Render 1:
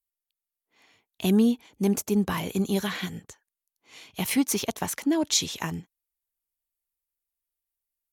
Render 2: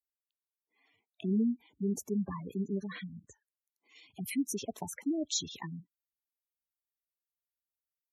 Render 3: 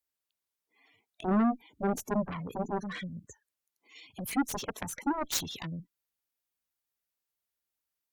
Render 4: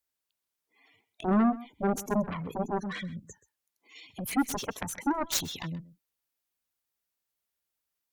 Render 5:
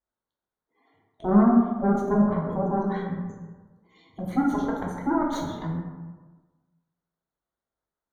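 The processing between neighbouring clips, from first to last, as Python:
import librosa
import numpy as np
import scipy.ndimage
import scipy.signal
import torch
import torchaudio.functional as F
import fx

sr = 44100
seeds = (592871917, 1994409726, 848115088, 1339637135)

y1 = scipy.signal.sosfilt(scipy.signal.butter(4, 46.0, 'highpass', fs=sr, output='sos'), x)
y1 = fx.spec_gate(y1, sr, threshold_db=-10, keep='strong')
y1 = y1 * librosa.db_to_amplitude(-8.0)
y2 = fx.cheby_harmonics(y1, sr, harmonics=(7, 8), levels_db=(-10, -28), full_scale_db=-20.0)
y2 = 10.0 ** (-23.5 / 20.0) * np.tanh(y2 / 10.0 ** (-23.5 / 20.0))
y2 = y2 * librosa.db_to_amplitude(4.0)
y3 = y2 + 10.0 ** (-18.5 / 20.0) * np.pad(y2, (int(129 * sr / 1000.0), 0))[:len(y2)]
y3 = y3 * librosa.db_to_amplitude(2.0)
y4 = scipy.signal.lfilter(np.full(17, 1.0 / 17), 1.0, y3)
y4 = fx.rev_plate(y4, sr, seeds[0], rt60_s=1.3, hf_ratio=0.4, predelay_ms=0, drr_db=-2.5)
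y4 = y4 * librosa.db_to_amplitude(2.5)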